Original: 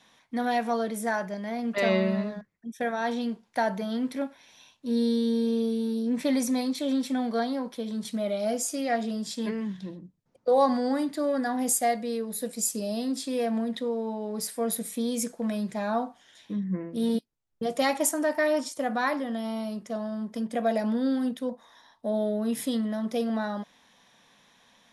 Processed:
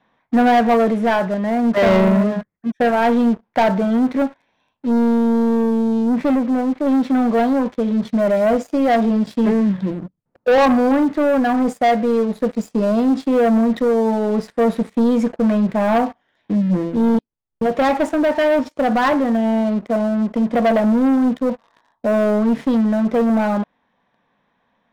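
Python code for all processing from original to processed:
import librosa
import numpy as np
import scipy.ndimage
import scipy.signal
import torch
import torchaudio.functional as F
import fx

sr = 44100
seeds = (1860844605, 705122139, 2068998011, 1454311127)

y = fx.chain(x, sr, fx.lowpass(hz=1800.0, slope=24),
    fx.tilt_eq(slope=1.5), at=(6.35, 6.87))
y = scipy.signal.sosfilt(scipy.signal.butter(2, 1600.0, 'lowpass', fs=sr, output='sos'), y)
y = fx.leveller(y, sr, passes=3)
y = fx.rider(y, sr, range_db=10, speed_s=2.0)
y = y * librosa.db_to_amplitude(3.5)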